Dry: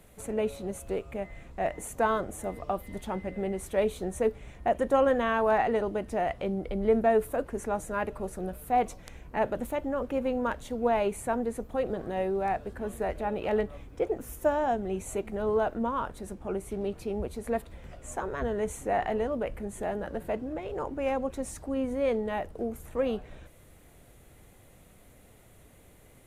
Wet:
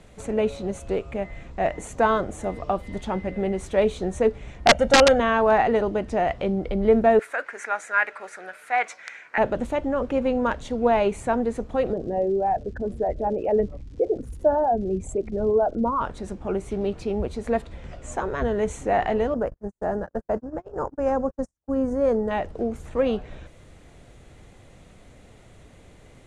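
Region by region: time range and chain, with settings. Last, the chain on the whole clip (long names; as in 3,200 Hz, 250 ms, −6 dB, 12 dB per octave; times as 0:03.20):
0:04.66–0:05.20: comb filter 1.4 ms, depth 87% + wrap-around overflow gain 13 dB
0:07.19–0:09.38: high-pass filter 880 Hz + flat-topped bell 1,800 Hz +11 dB 1 octave
0:11.92–0:16.00: spectral envelope exaggerated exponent 2 + surface crackle 270 per second −52 dBFS
0:19.34–0:22.31: noise gate −35 dBFS, range −52 dB + flat-topped bell 2,900 Hz −15.5 dB 1.2 octaves
whole clip: Bessel low-pass filter 5,100 Hz, order 4; bass and treble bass +1 dB, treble +5 dB; level +6 dB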